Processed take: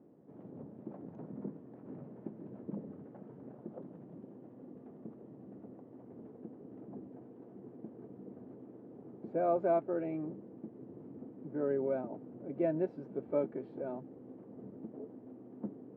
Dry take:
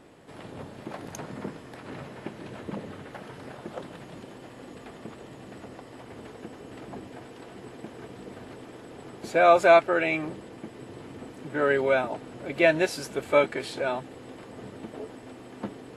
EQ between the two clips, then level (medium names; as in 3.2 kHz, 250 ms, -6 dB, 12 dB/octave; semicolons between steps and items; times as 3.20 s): ladder band-pass 250 Hz, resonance 20%; +6.0 dB